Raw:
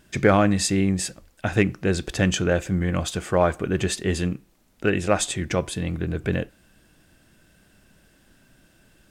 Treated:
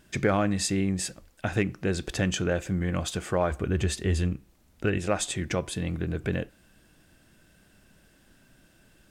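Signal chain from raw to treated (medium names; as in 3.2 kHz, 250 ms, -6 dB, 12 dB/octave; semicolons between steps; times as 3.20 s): 3.51–4.98 s: peaking EQ 69 Hz +13.5 dB 0.98 oct; compression 1.5:1, threshold -26 dBFS, peak gain reduction 5.5 dB; trim -2 dB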